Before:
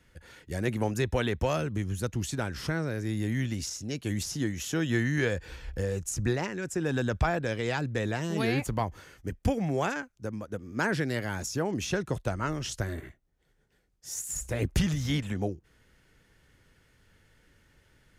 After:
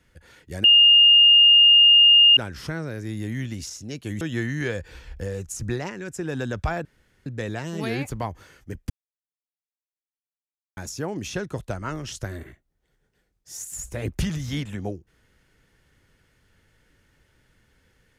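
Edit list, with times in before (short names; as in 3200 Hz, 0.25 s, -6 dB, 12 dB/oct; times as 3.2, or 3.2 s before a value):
0.64–2.37 bleep 2830 Hz -10 dBFS
4.21–4.78 cut
7.42–7.83 room tone
9.47–11.34 mute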